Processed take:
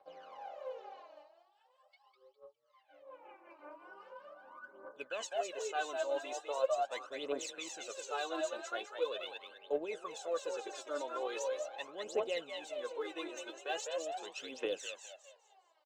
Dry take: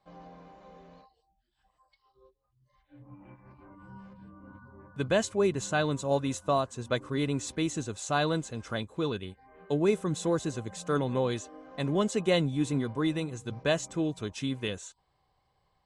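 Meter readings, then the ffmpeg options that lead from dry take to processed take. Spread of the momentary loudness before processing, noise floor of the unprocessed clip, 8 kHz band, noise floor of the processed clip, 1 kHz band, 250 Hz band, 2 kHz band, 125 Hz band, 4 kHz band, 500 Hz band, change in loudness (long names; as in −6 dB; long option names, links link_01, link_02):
11 LU, −75 dBFS, −7.0 dB, −72 dBFS, −5.5 dB, −19.5 dB, −7.0 dB, below −40 dB, −6.5 dB, −7.0 dB, −9.5 dB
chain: -filter_complex "[0:a]areverse,acompressor=threshold=-35dB:ratio=6,areverse,highpass=frequency=380:width=0.5412,highpass=frequency=380:width=1.3066,equalizer=frequency=540:width_type=q:width=4:gain=10,equalizer=frequency=790:width_type=q:width=4:gain=7,equalizer=frequency=1400:width_type=q:width=4:gain=5,equalizer=frequency=2800:width_type=q:width=4:gain=8,lowpass=frequency=7500:width=0.5412,lowpass=frequency=7500:width=1.3066,asplit=2[link_01][link_02];[link_02]adelay=12,volume=-12.5dB[link_03];[link_01][link_03]amix=inputs=2:normalize=0,asplit=5[link_04][link_05][link_06][link_07][link_08];[link_05]adelay=204,afreqshift=39,volume=-5dB[link_09];[link_06]adelay=408,afreqshift=78,volume=-14.9dB[link_10];[link_07]adelay=612,afreqshift=117,volume=-24.8dB[link_11];[link_08]adelay=816,afreqshift=156,volume=-34.7dB[link_12];[link_04][link_09][link_10][link_11][link_12]amix=inputs=5:normalize=0,aphaser=in_gain=1:out_gain=1:delay=3.4:decay=0.76:speed=0.41:type=triangular,volume=-6dB"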